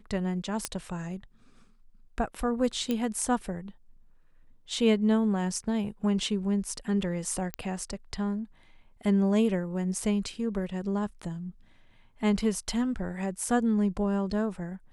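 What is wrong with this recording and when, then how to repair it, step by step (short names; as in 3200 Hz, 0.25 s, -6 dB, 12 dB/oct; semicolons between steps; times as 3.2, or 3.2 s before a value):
0.65 pop -13 dBFS
2.91 pop -16 dBFS
7.54 pop -16 dBFS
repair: de-click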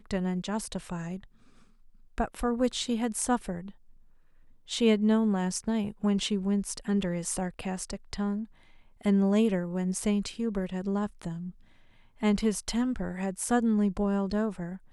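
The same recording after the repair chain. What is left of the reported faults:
none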